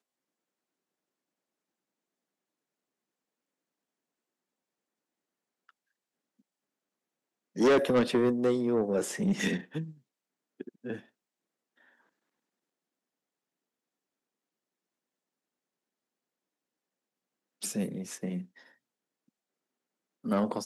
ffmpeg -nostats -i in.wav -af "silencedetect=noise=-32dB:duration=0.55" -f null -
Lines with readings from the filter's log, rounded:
silence_start: 0.00
silence_end: 7.58 | silence_duration: 7.58
silence_start: 9.83
silence_end: 10.61 | silence_duration: 0.78
silence_start: 10.96
silence_end: 17.63 | silence_duration: 6.68
silence_start: 18.38
silence_end: 20.26 | silence_duration: 1.88